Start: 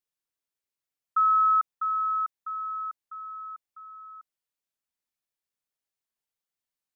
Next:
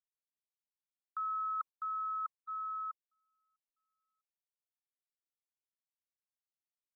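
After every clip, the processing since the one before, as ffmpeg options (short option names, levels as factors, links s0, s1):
-af "agate=range=0.0112:threshold=0.02:ratio=16:detection=peak,equalizer=f=1100:t=o:w=0.27:g=10,areverse,acompressor=threshold=0.0355:ratio=6,areverse,volume=0.447"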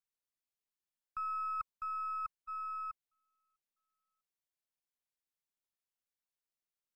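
-af "aeval=exprs='if(lt(val(0),0),0.708*val(0),val(0))':c=same"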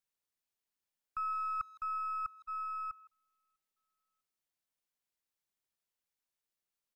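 -filter_complex "[0:a]asplit=2[s0][s1];[s1]adelay=160,highpass=300,lowpass=3400,asoftclip=type=hard:threshold=0.0168,volume=0.1[s2];[s0][s2]amix=inputs=2:normalize=0,volume=1.26"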